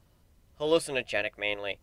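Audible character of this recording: noise floor -64 dBFS; spectral tilt -3.0 dB/oct

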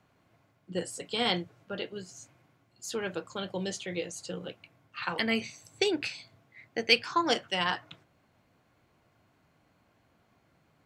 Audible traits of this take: noise floor -69 dBFS; spectral tilt -3.0 dB/oct

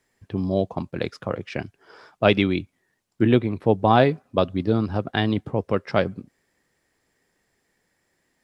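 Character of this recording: noise floor -72 dBFS; spectral tilt -5.5 dB/oct

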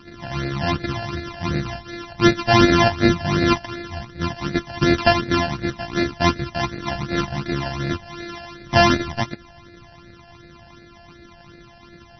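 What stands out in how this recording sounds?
a buzz of ramps at a fixed pitch in blocks of 128 samples; phasing stages 12, 2.7 Hz, lowest notch 370–1000 Hz; MP3

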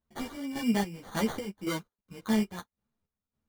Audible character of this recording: chopped level 1.8 Hz, depth 65%, duty 50%; aliases and images of a low sample rate 2600 Hz, jitter 0%; a shimmering, thickened sound

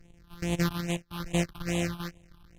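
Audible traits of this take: a buzz of ramps at a fixed pitch in blocks of 256 samples; phasing stages 6, 2.4 Hz, lowest notch 520–1400 Hz; AAC

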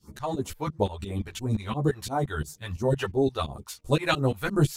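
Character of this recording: phasing stages 2, 2.9 Hz, lowest notch 200–3000 Hz; tremolo saw up 5.8 Hz, depth 95%; a shimmering, thickened sound

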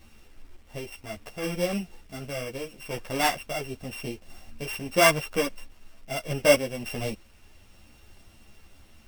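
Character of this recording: a buzz of ramps at a fixed pitch in blocks of 16 samples; random-step tremolo; a quantiser's noise floor 10-bit, dither none; a shimmering, thickened sound

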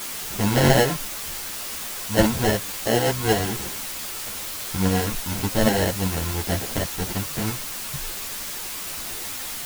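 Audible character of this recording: aliases and images of a low sample rate 1200 Hz, jitter 0%; tremolo saw up 8.4 Hz, depth 40%; a quantiser's noise floor 6-bit, dither triangular; a shimmering, thickened sound

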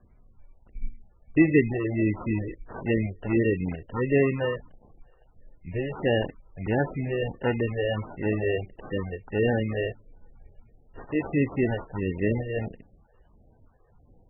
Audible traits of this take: phasing stages 6, 1.5 Hz, lowest notch 210–2600 Hz; aliases and images of a low sample rate 2300 Hz, jitter 0%; MP3

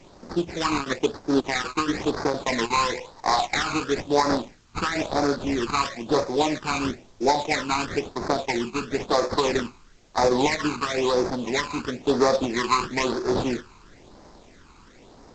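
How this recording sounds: aliases and images of a low sample rate 3000 Hz, jitter 20%; phasing stages 12, 1 Hz, lowest notch 570–2900 Hz; a quantiser's noise floor 10-bit, dither triangular; G.722

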